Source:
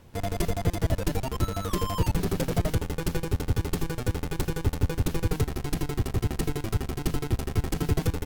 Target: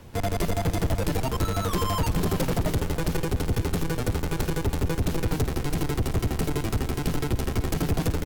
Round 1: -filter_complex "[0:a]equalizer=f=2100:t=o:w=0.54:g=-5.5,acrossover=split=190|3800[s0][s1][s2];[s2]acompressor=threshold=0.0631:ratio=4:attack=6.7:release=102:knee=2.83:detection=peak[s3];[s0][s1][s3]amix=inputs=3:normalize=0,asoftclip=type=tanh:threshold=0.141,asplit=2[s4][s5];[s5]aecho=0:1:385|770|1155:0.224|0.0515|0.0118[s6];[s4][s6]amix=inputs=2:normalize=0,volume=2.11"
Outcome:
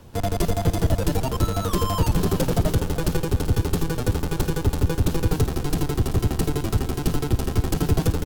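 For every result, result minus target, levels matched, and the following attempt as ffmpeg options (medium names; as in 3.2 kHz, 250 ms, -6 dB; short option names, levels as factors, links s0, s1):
saturation: distortion -10 dB; 2 kHz band -3.5 dB
-filter_complex "[0:a]equalizer=f=2100:t=o:w=0.54:g=-5.5,acrossover=split=190|3800[s0][s1][s2];[s2]acompressor=threshold=0.0631:ratio=4:attack=6.7:release=102:knee=2.83:detection=peak[s3];[s0][s1][s3]amix=inputs=3:normalize=0,asoftclip=type=tanh:threshold=0.0501,asplit=2[s4][s5];[s5]aecho=0:1:385|770|1155:0.224|0.0515|0.0118[s6];[s4][s6]amix=inputs=2:normalize=0,volume=2.11"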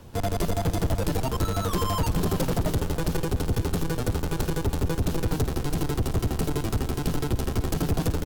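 2 kHz band -2.5 dB
-filter_complex "[0:a]acrossover=split=190|3800[s0][s1][s2];[s2]acompressor=threshold=0.0631:ratio=4:attack=6.7:release=102:knee=2.83:detection=peak[s3];[s0][s1][s3]amix=inputs=3:normalize=0,asoftclip=type=tanh:threshold=0.0501,asplit=2[s4][s5];[s5]aecho=0:1:385|770|1155:0.224|0.0515|0.0118[s6];[s4][s6]amix=inputs=2:normalize=0,volume=2.11"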